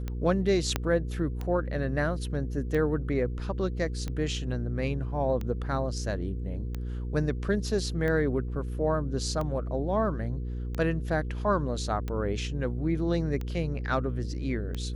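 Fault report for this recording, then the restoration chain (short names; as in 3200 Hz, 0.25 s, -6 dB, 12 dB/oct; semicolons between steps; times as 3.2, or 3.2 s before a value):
hum 60 Hz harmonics 8 -33 dBFS
tick 45 rpm -21 dBFS
0.76 pop -11 dBFS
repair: de-click; de-hum 60 Hz, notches 8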